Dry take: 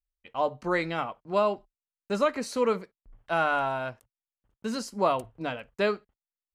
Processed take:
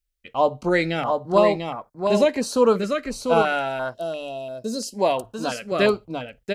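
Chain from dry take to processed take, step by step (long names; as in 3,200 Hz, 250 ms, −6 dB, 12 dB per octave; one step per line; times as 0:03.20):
single-tap delay 694 ms −5 dB
0:03.94–0:04.94: gain on a spectral selection 710–2,500 Hz −19 dB
0:03.42–0:05.72: low-shelf EQ 250 Hz −10.5 dB
notch on a step sequencer 2.9 Hz 910–2,900 Hz
level +8.5 dB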